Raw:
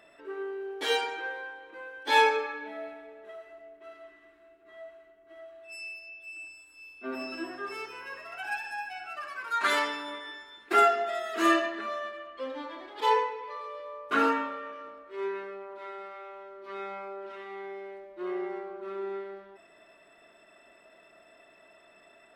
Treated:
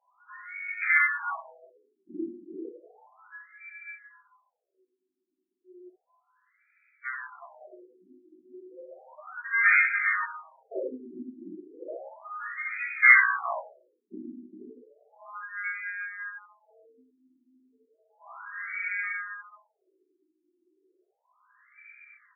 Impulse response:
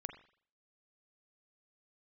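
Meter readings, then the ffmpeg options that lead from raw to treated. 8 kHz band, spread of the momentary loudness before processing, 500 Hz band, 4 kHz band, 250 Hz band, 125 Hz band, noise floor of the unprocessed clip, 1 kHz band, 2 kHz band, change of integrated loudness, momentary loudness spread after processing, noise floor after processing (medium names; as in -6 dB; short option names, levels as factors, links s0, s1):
under -30 dB, 22 LU, -11.0 dB, under -40 dB, -7.0 dB, no reading, -59 dBFS, -7.0 dB, +8.5 dB, +6.0 dB, 24 LU, -81 dBFS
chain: -filter_complex "[0:a]equalizer=f=2300:t=o:w=2.1:g=-14,aeval=exprs='0.168*(cos(1*acos(clip(val(0)/0.168,-1,1)))-cos(1*PI/2))+0.0596*(cos(8*acos(clip(val(0)/0.168,-1,1)))-cos(8*PI/2))':c=same,flanger=delay=1.2:depth=7.5:regen=-34:speed=0.26:shape=triangular,asplit=2[s0][s1];[s1]adelay=16,volume=0.631[s2];[s0][s2]amix=inputs=2:normalize=0,aecho=1:1:54|62|281|397:0.398|0.133|0.211|0.501,asplit=2[s3][s4];[1:a]atrim=start_sample=2205[s5];[s4][s5]afir=irnorm=-1:irlink=0,volume=1.5[s6];[s3][s6]amix=inputs=2:normalize=0,lowpass=f=2600:t=q:w=0.5098,lowpass=f=2600:t=q:w=0.6013,lowpass=f=2600:t=q:w=0.9,lowpass=f=2600:t=q:w=2.563,afreqshift=-3000,afftfilt=real='re*between(b*sr/1024,250*pow(1800/250,0.5+0.5*sin(2*PI*0.33*pts/sr))/1.41,250*pow(1800/250,0.5+0.5*sin(2*PI*0.33*pts/sr))*1.41)':imag='im*between(b*sr/1024,250*pow(1800/250,0.5+0.5*sin(2*PI*0.33*pts/sr))/1.41,250*pow(1800/250,0.5+0.5*sin(2*PI*0.33*pts/sr))*1.41)':win_size=1024:overlap=0.75,volume=2.37"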